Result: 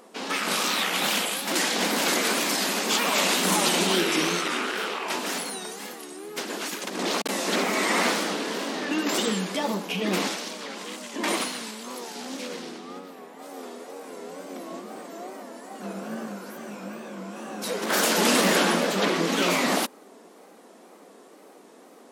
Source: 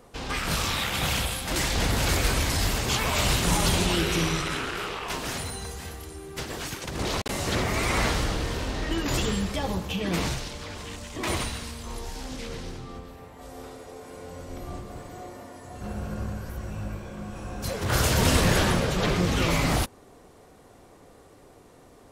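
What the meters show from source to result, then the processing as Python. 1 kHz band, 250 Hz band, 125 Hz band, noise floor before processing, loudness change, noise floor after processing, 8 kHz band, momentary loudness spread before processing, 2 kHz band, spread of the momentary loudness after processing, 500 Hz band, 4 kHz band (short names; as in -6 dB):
+3.0 dB, +1.5 dB, -11.5 dB, -53 dBFS, +2.0 dB, -51 dBFS, +3.0 dB, 18 LU, +3.0 dB, 18 LU, +3.0 dB, +3.0 dB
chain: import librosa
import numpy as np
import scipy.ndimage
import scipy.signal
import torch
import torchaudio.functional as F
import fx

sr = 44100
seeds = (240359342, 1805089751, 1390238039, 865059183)

y = fx.wow_flutter(x, sr, seeds[0], rate_hz=2.1, depth_cents=130.0)
y = fx.brickwall_highpass(y, sr, low_hz=180.0)
y = F.gain(torch.from_numpy(y), 3.0).numpy()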